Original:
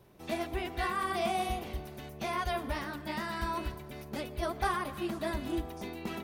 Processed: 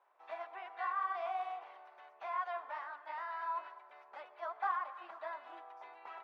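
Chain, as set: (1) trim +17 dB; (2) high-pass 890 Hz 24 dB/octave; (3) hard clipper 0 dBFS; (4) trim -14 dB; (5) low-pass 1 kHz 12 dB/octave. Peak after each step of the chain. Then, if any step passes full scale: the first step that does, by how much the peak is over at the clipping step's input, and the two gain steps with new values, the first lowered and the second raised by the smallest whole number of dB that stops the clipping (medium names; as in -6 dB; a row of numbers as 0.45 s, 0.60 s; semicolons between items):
-1.5 dBFS, -5.0 dBFS, -5.0 dBFS, -19.0 dBFS, -25.0 dBFS; nothing clips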